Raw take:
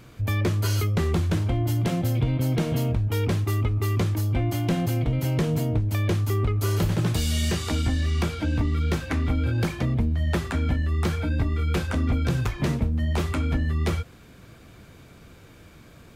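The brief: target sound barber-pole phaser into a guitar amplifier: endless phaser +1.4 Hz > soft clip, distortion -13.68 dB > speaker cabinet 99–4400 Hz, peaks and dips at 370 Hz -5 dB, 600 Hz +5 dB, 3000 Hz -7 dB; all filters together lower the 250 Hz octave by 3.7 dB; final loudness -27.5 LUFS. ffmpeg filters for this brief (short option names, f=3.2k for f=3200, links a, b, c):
-filter_complex "[0:a]equalizer=f=250:t=o:g=-4,asplit=2[a][b];[b]afreqshift=1.4[c];[a][c]amix=inputs=2:normalize=1,asoftclip=threshold=-25.5dB,highpass=99,equalizer=f=370:t=q:w=4:g=-5,equalizer=f=600:t=q:w=4:g=5,equalizer=f=3k:t=q:w=4:g=-7,lowpass=f=4.4k:w=0.5412,lowpass=f=4.4k:w=1.3066,volume=6.5dB"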